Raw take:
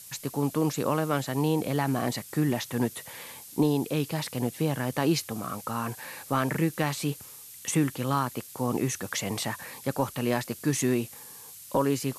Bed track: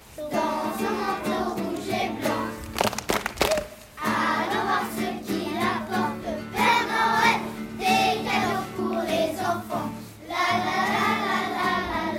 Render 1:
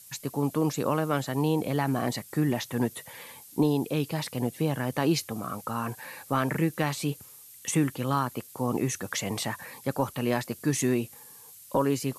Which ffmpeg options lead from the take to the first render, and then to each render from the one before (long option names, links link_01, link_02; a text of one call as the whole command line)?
ffmpeg -i in.wav -af "afftdn=noise_reduction=6:noise_floor=-47" out.wav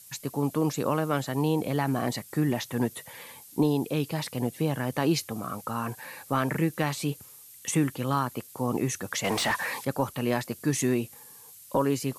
ffmpeg -i in.wav -filter_complex "[0:a]asettb=1/sr,asplit=3[link_01][link_02][link_03];[link_01]atrim=end=9.244[link_04];[link_02]atrim=start=9.24:end=9.85,asetpts=PTS-STARTPTS,afade=type=in:duration=0.004:curve=qsin,afade=type=out:start_time=0.606:duration=0.004:curve=qsin,asplit=2[link_05][link_06];[link_06]highpass=frequency=720:poles=1,volume=21dB,asoftclip=type=tanh:threshold=-16.5dB[link_07];[link_05][link_07]amix=inputs=2:normalize=0,lowpass=frequency=3600:poles=1,volume=-6dB[link_08];[link_03]atrim=start=9.846[link_09];[link_04][link_08]acrossfade=duration=0.004:curve1=hsin:curve2=qsin[link_10];[link_10][link_09]acrossfade=duration=0.004:curve1=qsin:curve2=hsin" out.wav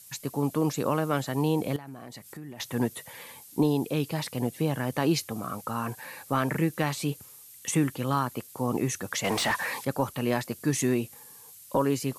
ffmpeg -i in.wav -filter_complex "[0:a]asettb=1/sr,asplit=3[link_01][link_02][link_03];[link_01]atrim=end=1.764[link_04];[link_02]atrim=start=1.76:end=2.6,asetpts=PTS-STARTPTS,afade=type=in:duration=0.004:curve=qsin,afade=type=out:start_time=0.836:duration=0.004:curve=qsin,acompressor=threshold=-40dB:ratio=5:attack=3.2:release=140:knee=1:detection=peak[link_05];[link_03]atrim=start=2.596[link_06];[link_04][link_05]acrossfade=duration=0.004:curve1=hsin:curve2=qsin[link_07];[link_07][link_06]acrossfade=duration=0.004:curve1=qsin:curve2=hsin" out.wav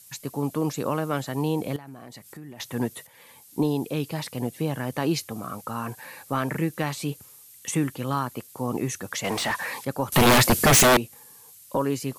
ffmpeg -i in.wav -filter_complex "[0:a]asettb=1/sr,asplit=3[link_01][link_02][link_03];[link_01]atrim=end=10.124[link_04];[link_02]atrim=start=10.12:end=10.97,asetpts=PTS-STARTPTS,afade=type=in:duration=0.004:curve=qsin,afade=type=out:start_time=0.846:duration=0.004:curve=qsin,aeval=exprs='0.237*sin(PI/2*7.08*val(0)/0.237)':channel_layout=same[link_05];[link_03]atrim=start=10.966[link_06];[link_04][link_05]acrossfade=duration=0.004:curve1=hsin:curve2=qsin[link_07];[link_07][link_06]acrossfade=duration=0.004:curve1=qsin:curve2=hsin,asplit=2[link_08][link_09];[link_08]atrim=end=3.07,asetpts=PTS-STARTPTS,afade=type=out:start_time=3.066:duration=0.004:curve=hsin:silence=0.237137[link_10];[link_09]atrim=start=3.07,asetpts=PTS-STARTPTS,afade=type=in:duration=0.54:silence=0.237137[link_11];[link_10][link_11]concat=n=2:v=0:a=1" out.wav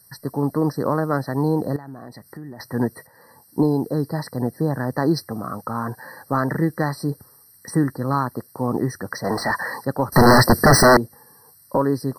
ffmpeg -i in.wav -filter_complex "[0:a]asplit=2[link_01][link_02];[link_02]adynamicsmooth=sensitivity=3:basefreq=2600,volume=-1dB[link_03];[link_01][link_03]amix=inputs=2:normalize=0,afftfilt=real='re*eq(mod(floor(b*sr/1024/2000),2),0)':imag='im*eq(mod(floor(b*sr/1024/2000),2),0)':win_size=1024:overlap=0.75" out.wav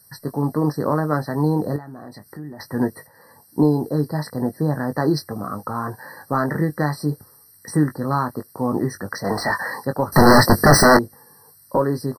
ffmpeg -i in.wav -filter_complex "[0:a]asplit=2[link_01][link_02];[link_02]adelay=20,volume=-8dB[link_03];[link_01][link_03]amix=inputs=2:normalize=0" out.wav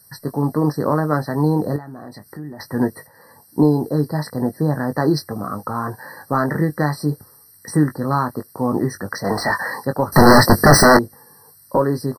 ffmpeg -i in.wav -af "volume=2dB,alimiter=limit=-1dB:level=0:latency=1" out.wav